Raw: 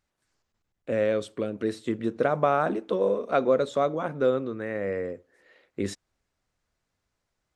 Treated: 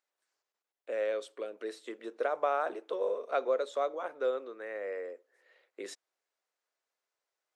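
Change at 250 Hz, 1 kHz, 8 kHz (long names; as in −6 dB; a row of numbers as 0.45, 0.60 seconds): −17.5 dB, −6.5 dB, can't be measured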